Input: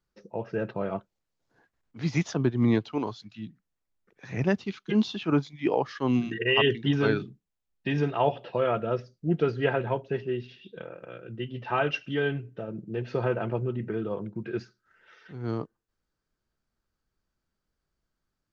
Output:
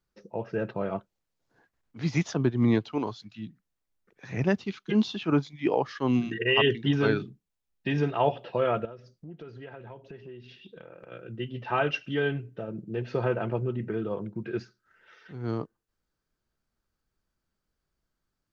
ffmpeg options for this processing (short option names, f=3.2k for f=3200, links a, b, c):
-filter_complex "[0:a]asettb=1/sr,asplit=3[a][b][c];[a]atrim=end=8.854[d];[b]atrim=start=8.85:end=11.12,asetpts=PTS-STARTPTS,afade=t=in:d=0.004:c=qsin,afade=t=out:st=2.266:d=0.004:c=qsin,acompressor=threshold=-42dB:ratio=5:attack=3.2:release=140:knee=1:detection=peak[e];[c]atrim=start=11.116[f];[d][e]acrossfade=d=0.004:c1=hsin:c2=qsin[g];[g][f]acrossfade=d=0.004:c1=qsin:c2=hsin"